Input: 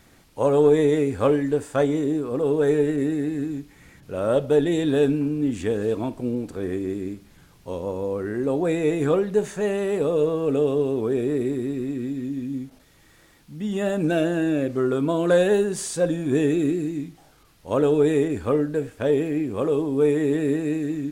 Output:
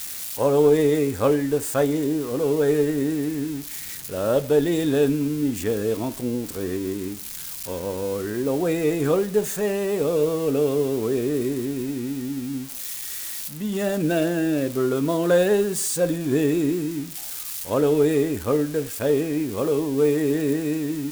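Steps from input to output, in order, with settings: switching spikes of -24 dBFS

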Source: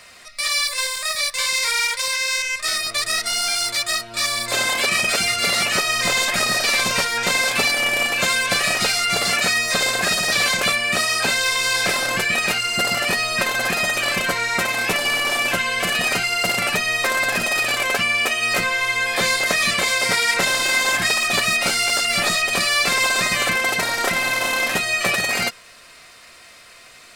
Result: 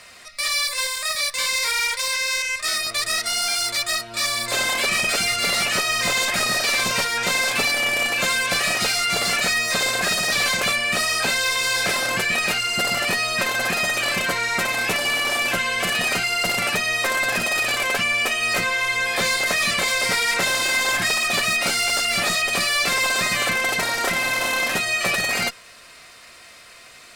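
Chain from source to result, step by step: added harmonics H 4 -21 dB, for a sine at -5 dBFS; soft clip -14 dBFS, distortion -16 dB

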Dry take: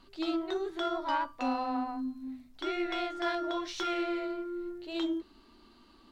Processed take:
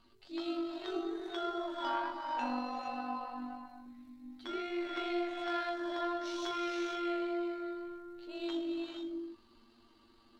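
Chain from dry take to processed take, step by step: non-linear reverb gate 0.3 s rising, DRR 2.5 dB; granular stretch 1.7×, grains 42 ms; gain -5.5 dB

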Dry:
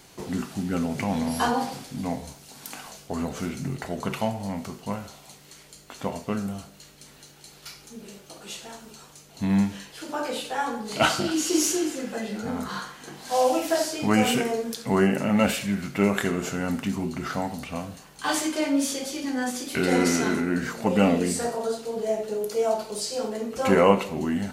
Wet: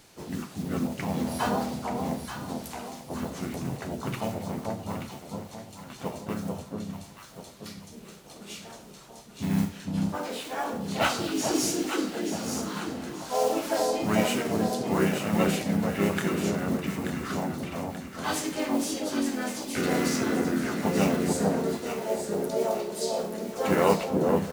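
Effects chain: modulation noise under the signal 21 dB; echo with dull and thin repeats by turns 0.441 s, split 980 Hz, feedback 62%, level -2.5 dB; harmoniser -3 st -4 dB, +5 st -10 dB; gain -6 dB

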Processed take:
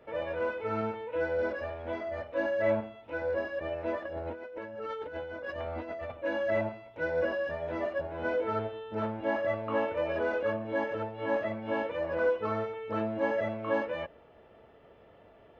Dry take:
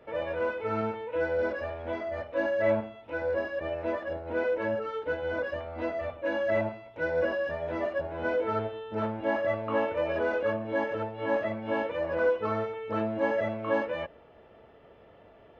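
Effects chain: 4.05–6.12 negative-ratio compressor -37 dBFS, ratio -1; gain -2 dB

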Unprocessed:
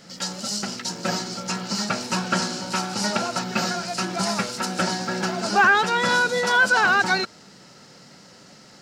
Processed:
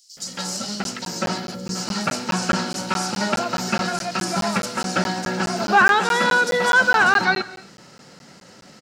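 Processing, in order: 1.38–1.59 spectral gain 570–10000 Hz -14 dB; 5.82–6.32 steep high-pass 170 Hz; bands offset in time highs, lows 0.17 s, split 4800 Hz; on a send at -16 dB: reverb, pre-delay 3 ms; on the sum: crackling interface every 0.21 s, samples 512, zero, from 0.84; gain +2.5 dB

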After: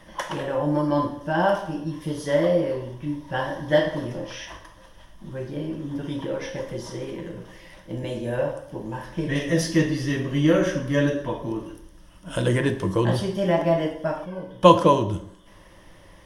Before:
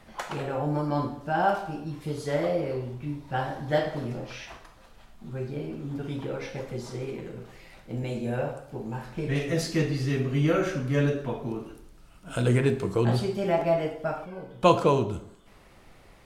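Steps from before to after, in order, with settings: ripple EQ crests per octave 1.2, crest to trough 10 dB; gain +3 dB

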